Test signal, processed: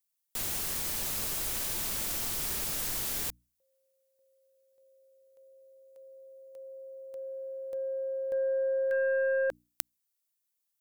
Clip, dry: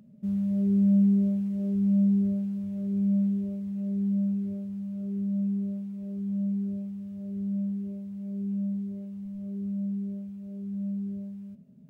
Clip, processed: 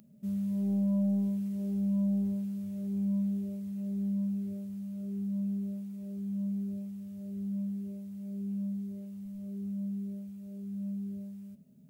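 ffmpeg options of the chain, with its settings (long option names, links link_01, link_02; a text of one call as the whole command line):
ffmpeg -i in.wav -af "crystalizer=i=3:c=0,bandreject=frequency=60:width_type=h:width=6,bandreject=frequency=120:width_type=h:width=6,bandreject=frequency=180:width_type=h:width=6,bandreject=frequency=240:width_type=h:width=6,bandreject=frequency=300:width_type=h:width=6,aeval=exprs='0.668*(cos(1*acos(clip(val(0)/0.668,-1,1)))-cos(1*PI/2))+0.237*(cos(3*acos(clip(val(0)/0.668,-1,1)))-cos(3*PI/2))+0.00596*(cos(4*acos(clip(val(0)/0.668,-1,1)))-cos(4*PI/2))+0.00473*(cos(6*acos(clip(val(0)/0.668,-1,1)))-cos(6*PI/2))+0.0531*(cos(7*acos(clip(val(0)/0.668,-1,1)))-cos(7*PI/2))':channel_layout=same" out.wav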